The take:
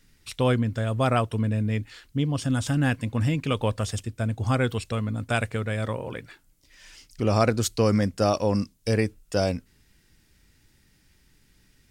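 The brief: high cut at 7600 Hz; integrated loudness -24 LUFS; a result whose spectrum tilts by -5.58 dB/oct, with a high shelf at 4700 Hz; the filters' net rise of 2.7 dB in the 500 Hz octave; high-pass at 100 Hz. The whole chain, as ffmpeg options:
-af "highpass=100,lowpass=7.6k,equalizer=f=500:t=o:g=3,highshelf=f=4.7k:g=7.5,volume=1dB"

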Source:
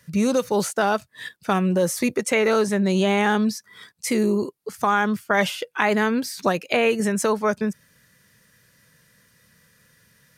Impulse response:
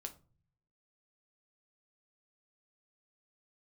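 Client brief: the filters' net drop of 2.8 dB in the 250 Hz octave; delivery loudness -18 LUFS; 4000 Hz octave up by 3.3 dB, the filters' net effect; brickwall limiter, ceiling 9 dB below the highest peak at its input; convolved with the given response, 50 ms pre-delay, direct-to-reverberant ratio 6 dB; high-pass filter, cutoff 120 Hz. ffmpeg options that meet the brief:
-filter_complex "[0:a]highpass=120,equalizer=f=250:t=o:g=-3,equalizer=f=4k:t=o:g=4.5,alimiter=limit=-12dB:level=0:latency=1,asplit=2[a][b];[1:a]atrim=start_sample=2205,adelay=50[c];[b][c]afir=irnorm=-1:irlink=0,volume=-2.5dB[d];[a][d]amix=inputs=2:normalize=0,volume=5.5dB"

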